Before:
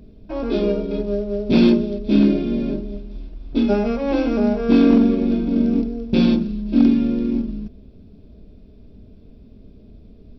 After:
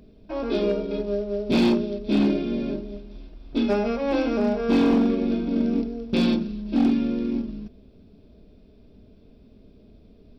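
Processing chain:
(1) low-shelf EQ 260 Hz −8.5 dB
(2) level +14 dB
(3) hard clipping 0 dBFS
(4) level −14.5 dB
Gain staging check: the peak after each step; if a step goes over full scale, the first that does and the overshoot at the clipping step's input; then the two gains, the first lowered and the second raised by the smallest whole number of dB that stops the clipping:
−7.0, +7.0, 0.0, −14.5 dBFS
step 2, 7.0 dB
step 2 +7 dB, step 4 −7.5 dB

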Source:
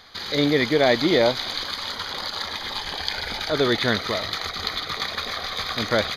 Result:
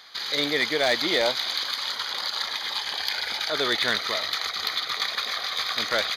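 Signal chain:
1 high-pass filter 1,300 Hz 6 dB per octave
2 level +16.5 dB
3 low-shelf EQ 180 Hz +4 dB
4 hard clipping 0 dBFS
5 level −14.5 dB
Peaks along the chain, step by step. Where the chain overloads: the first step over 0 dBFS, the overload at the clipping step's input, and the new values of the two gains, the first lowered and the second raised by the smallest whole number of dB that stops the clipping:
−6.5, +10.0, +10.0, 0.0, −14.5 dBFS
step 2, 10.0 dB
step 2 +6.5 dB, step 5 −4.5 dB

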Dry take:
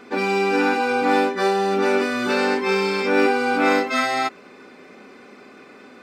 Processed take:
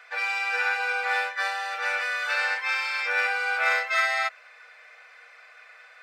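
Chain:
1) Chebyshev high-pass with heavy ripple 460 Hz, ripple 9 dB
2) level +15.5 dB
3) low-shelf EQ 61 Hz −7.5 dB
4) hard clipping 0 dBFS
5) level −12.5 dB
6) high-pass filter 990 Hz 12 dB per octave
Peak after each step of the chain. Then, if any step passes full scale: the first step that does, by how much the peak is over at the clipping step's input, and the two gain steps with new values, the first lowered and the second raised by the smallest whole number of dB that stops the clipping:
−12.0, +3.5, +3.5, 0.0, −12.5, −11.5 dBFS
step 2, 3.5 dB
step 2 +11.5 dB, step 5 −8.5 dB

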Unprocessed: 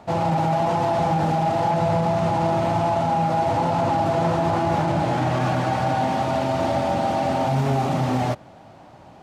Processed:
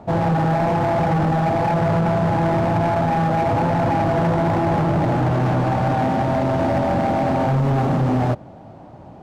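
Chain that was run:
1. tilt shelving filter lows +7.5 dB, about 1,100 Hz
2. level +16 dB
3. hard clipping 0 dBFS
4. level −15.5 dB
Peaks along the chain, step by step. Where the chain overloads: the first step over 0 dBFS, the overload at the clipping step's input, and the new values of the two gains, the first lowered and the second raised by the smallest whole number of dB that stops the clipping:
−6.5, +9.5, 0.0, −15.5 dBFS
step 2, 9.5 dB
step 2 +6 dB, step 4 −5.5 dB

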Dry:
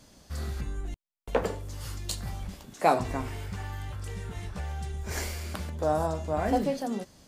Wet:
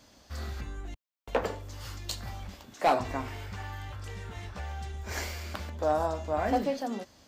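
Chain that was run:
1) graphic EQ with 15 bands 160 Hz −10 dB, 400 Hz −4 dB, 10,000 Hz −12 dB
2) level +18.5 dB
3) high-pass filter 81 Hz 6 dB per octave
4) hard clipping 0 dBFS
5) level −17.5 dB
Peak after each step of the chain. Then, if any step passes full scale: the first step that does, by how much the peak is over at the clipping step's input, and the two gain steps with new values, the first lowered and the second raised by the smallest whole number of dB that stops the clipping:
−9.0, +9.5, +9.5, 0.0, −17.5 dBFS
step 2, 9.5 dB
step 2 +8.5 dB, step 5 −7.5 dB

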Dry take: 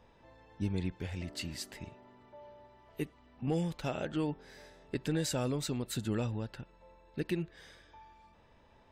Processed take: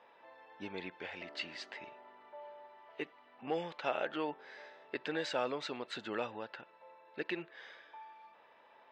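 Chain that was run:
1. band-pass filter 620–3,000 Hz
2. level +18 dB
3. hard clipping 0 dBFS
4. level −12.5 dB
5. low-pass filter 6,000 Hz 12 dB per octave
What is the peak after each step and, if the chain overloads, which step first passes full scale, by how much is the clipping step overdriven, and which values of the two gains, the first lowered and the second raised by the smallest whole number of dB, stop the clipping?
−24.0, −6.0, −6.0, −18.5, −18.5 dBFS
no step passes full scale

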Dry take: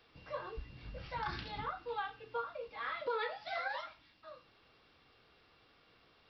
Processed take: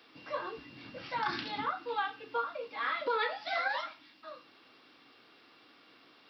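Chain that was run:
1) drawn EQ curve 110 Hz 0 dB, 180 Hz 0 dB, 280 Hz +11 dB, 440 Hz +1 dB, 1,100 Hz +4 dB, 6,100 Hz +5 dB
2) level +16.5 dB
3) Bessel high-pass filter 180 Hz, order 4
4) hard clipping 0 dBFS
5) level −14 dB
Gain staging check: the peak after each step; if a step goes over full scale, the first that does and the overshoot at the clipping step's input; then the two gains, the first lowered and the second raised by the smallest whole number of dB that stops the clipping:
−23.0, −6.5, −6.0, −6.0, −20.0 dBFS
no step passes full scale

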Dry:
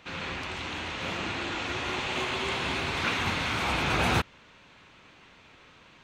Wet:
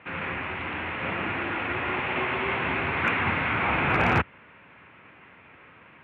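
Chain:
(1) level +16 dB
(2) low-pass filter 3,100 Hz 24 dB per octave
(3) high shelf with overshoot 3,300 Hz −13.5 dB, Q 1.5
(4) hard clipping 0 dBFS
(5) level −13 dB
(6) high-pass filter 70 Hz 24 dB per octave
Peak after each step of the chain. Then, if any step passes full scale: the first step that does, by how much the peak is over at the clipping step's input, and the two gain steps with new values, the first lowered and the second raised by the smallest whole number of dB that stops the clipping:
+2.5, +2.0, +3.0, 0.0, −13.0, −11.0 dBFS
step 1, 3.0 dB
step 1 +13 dB, step 5 −10 dB

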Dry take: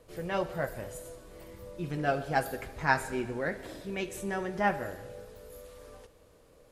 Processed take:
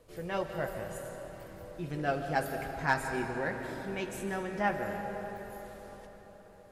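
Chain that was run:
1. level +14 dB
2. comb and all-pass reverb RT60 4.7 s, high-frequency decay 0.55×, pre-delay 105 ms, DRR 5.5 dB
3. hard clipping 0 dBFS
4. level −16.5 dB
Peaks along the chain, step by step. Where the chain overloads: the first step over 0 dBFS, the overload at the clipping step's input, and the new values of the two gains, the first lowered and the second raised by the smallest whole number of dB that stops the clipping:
+3.5, +4.0, 0.0, −16.5 dBFS
step 1, 4.0 dB
step 1 +10 dB, step 4 −12.5 dB

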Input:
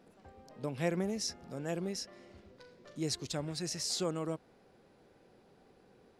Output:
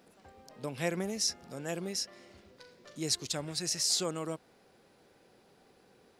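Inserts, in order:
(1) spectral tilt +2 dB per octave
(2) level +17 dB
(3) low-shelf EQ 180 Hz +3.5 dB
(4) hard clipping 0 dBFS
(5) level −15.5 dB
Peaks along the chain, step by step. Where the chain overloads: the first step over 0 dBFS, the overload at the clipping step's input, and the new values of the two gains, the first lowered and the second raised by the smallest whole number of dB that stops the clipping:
−18.5, −1.5, −1.5, −1.5, −17.0 dBFS
no step passes full scale

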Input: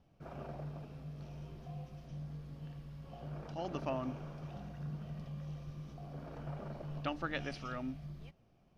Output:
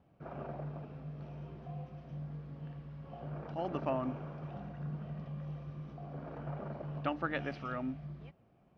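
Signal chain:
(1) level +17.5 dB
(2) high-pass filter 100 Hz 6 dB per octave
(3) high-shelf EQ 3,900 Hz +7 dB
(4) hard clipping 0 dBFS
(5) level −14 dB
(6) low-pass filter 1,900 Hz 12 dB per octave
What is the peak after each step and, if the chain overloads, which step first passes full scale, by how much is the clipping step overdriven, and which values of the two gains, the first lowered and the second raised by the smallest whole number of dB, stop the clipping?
−5.5, −7.0, −5.0, −5.0, −19.0, −21.5 dBFS
no step passes full scale

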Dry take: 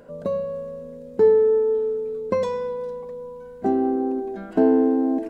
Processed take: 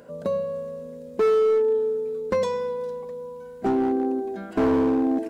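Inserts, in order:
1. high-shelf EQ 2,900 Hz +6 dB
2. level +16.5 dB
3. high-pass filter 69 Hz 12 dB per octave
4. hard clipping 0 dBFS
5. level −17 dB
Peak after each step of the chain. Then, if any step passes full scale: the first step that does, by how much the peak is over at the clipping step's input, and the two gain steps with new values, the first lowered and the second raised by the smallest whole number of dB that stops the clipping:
−7.0, +9.5, +10.0, 0.0, −17.0 dBFS
step 2, 10.0 dB
step 2 +6.5 dB, step 5 −7 dB

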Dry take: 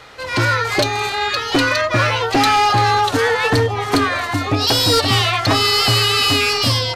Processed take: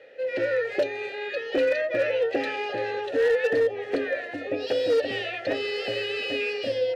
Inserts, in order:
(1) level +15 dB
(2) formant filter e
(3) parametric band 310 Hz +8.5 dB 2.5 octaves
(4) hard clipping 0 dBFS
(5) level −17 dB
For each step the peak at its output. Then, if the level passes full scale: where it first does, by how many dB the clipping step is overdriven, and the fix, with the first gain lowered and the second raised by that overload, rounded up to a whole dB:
+5.0, +0.5, +5.5, 0.0, −17.0 dBFS
step 1, 5.5 dB
step 1 +9 dB, step 5 −11 dB

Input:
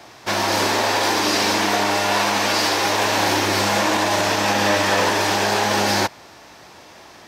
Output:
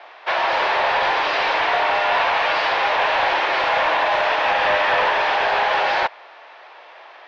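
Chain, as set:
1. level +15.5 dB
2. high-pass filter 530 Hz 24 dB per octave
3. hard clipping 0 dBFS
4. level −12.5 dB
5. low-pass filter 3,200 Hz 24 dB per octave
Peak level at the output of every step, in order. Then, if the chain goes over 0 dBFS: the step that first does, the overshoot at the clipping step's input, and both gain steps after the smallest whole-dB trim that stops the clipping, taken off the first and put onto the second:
+8.5, +8.5, 0.0, −12.5, −11.0 dBFS
step 1, 8.5 dB
step 1 +6.5 dB, step 4 −3.5 dB

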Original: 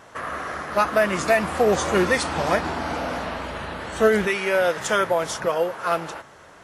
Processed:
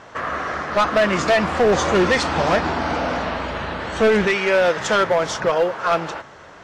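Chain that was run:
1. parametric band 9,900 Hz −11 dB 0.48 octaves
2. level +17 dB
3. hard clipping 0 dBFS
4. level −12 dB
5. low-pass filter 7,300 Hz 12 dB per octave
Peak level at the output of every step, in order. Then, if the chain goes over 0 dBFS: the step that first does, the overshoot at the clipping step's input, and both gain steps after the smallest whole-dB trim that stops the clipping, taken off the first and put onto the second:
−8.0, +9.0, 0.0, −12.0, −11.5 dBFS
step 2, 9.0 dB
step 2 +8 dB, step 4 −3 dB

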